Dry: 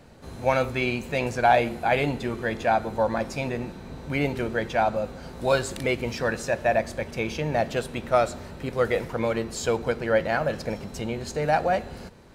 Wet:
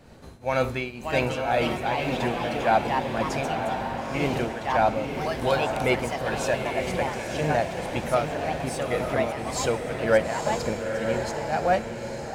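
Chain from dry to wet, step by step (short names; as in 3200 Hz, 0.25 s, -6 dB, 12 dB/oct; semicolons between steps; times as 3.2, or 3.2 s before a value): tremolo triangle 1.9 Hz, depth 90%; echoes that change speed 0.661 s, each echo +3 st, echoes 2, each echo -6 dB; diffused feedback echo 0.915 s, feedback 43%, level -5 dB; gain +2.5 dB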